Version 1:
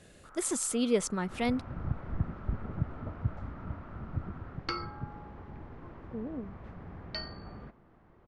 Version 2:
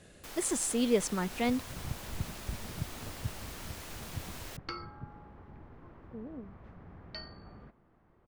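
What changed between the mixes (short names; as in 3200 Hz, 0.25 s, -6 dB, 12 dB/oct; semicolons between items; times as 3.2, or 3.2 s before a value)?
first sound: remove ladder low-pass 1400 Hz, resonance 80%; second sound -5.5 dB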